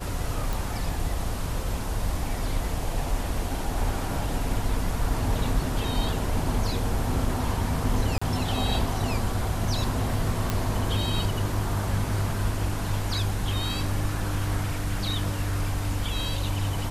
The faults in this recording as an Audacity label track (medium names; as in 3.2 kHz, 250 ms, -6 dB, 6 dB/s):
0.530000	0.530000	pop
8.180000	8.210000	dropout 35 ms
10.500000	10.500000	pop -11 dBFS